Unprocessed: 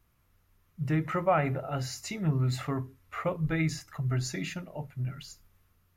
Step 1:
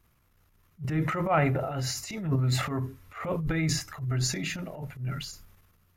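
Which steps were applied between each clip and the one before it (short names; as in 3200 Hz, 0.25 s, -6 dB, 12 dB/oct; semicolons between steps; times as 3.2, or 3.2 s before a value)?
transient shaper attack -11 dB, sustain +8 dB; gain +2 dB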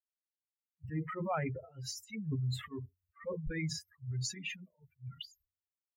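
per-bin expansion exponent 3; bell 12000 Hz -11 dB 0.57 oct; compressor 2.5:1, threshold -37 dBFS, peak gain reduction 9.5 dB; gain +1.5 dB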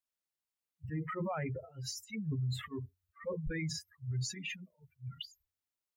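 limiter -31 dBFS, peak gain reduction 7.5 dB; gain +1.5 dB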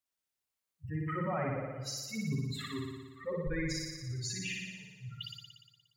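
flutter echo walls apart 10.1 m, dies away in 1.3 s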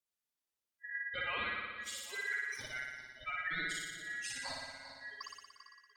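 spectral delete 0.87–1.14, 280–11000 Hz; delay with a stepping band-pass 0.394 s, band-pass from 2600 Hz, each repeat -1.4 oct, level -10.5 dB; ring modulator 1800 Hz; gain -1 dB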